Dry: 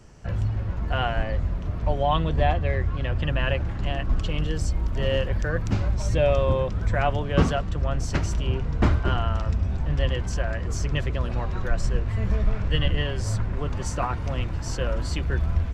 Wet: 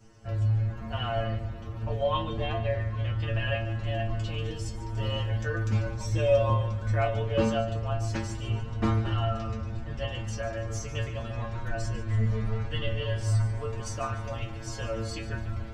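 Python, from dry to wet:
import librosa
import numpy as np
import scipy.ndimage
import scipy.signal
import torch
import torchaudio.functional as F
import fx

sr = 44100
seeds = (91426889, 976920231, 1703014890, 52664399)

y = fx.stiff_resonator(x, sr, f0_hz=110.0, decay_s=0.43, stiffness=0.002)
y = fx.echo_feedback(y, sr, ms=145, feedback_pct=41, wet_db=-13.5)
y = y * 10.0 ** (7.0 / 20.0)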